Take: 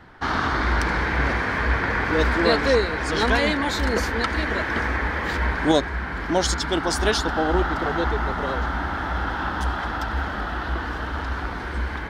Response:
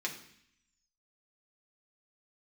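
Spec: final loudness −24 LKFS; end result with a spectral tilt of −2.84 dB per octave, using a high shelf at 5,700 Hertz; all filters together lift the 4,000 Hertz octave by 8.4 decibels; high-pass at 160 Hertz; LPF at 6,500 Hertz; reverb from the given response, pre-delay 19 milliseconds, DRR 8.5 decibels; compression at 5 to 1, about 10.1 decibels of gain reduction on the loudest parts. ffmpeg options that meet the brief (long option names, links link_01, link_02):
-filter_complex "[0:a]highpass=160,lowpass=6500,equalizer=frequency=4000:width_type=o:gain=7.5,highshelf=frequency=5700:gain=8.5,acompressor=threshold=-23dB:ratio=5,asplit=2[link_01][link_02];[1:a]atrim=start_sample=2205,adelay=19[link_03];[link_02][link_03]afir=irnorm=-1:irlink=0,volume=-12dB[link_04];[link_01][link_04]amix=inputs=2:normalize=0,volume=1.5dB"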